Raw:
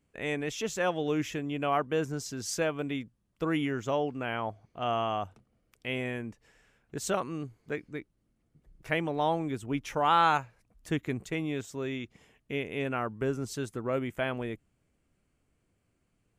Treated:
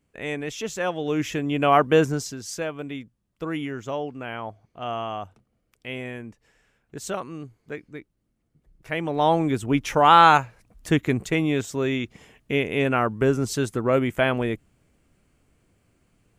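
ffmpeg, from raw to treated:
-af "volume=22dB,afade=t=in:st=1.01:d=0.95:silence=0.334965,afade=t=out:st=1.96:d=0.44:silence=0.251189,afade=t=in:st=8.91:d=0.5:silence=0.316228"

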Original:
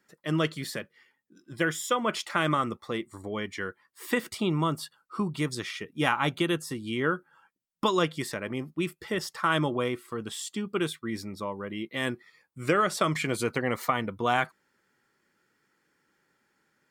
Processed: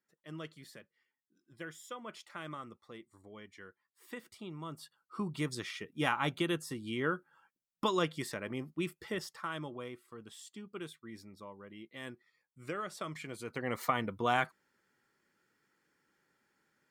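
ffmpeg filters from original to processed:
-af "volume=4.5dB,afade=t=in:st=4.61:d=0.78:silence=0.251189,afade=t=out:st=9.05:d=0.47:silence=0.354813,afade=t=in:st=13.44:d=0.42:silence=0.298538"

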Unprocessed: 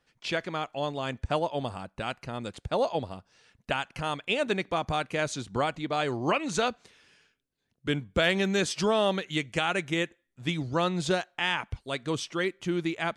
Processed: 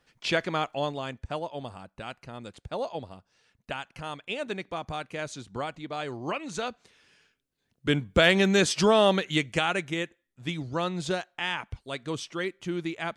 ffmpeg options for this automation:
-af "volume=14dB,afade=t=out:st=0.64:d=0.53:silence=0.334965,afade=t=in:st=6.64:d=1.48:silence=0.316228,afade=t=out:st=9.26:d=0.71:silence=0.446684"

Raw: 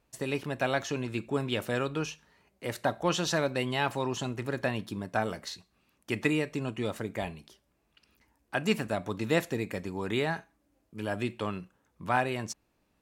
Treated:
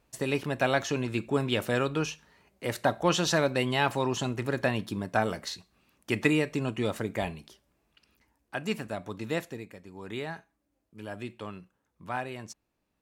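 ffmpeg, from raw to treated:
-af "volume=10dB,afade=t=out:st=7.34:d=1.26:silence=0.446684,afade=t=out:st=9.31:d=0.48:silence=0.334965,afade=t=in:st=9.79:d=0.36:silence=0.446684"

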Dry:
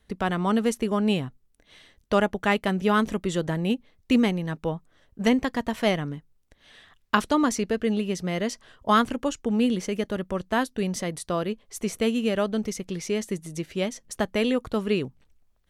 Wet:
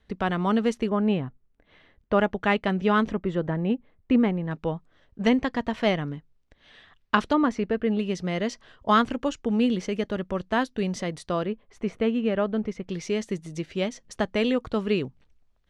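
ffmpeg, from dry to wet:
-af "asetnsamples=n=441:p=0,asendcmd='0.89 lowpass f 2000;2.19 lowpass f 3800;3.12 lowpass f 1800;4.51 lowpass f 4400;7.33 lowpass f 2400;7.99 lowpass f 5200;11.46 lowpass f 2200;12.89 lowpass f 5500',lowpass=4.6k"

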